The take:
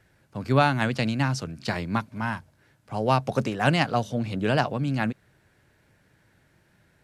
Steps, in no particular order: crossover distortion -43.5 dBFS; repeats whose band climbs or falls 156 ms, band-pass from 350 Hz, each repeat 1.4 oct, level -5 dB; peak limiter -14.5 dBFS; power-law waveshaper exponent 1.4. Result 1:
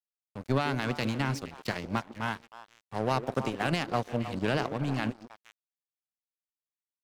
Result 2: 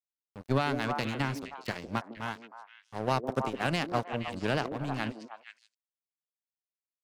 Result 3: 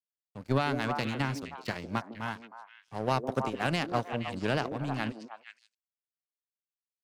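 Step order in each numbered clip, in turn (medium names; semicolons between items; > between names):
peak limiter > power-law waveshaper > repeats whose band climbs or falls > crossover distortion; power-law waveshaper > crossover distortion > repeats whose band climbs or falls > peak limiter; crossover distortion > power-law waveshaper > repeats whose band climbs or falls > peak limiter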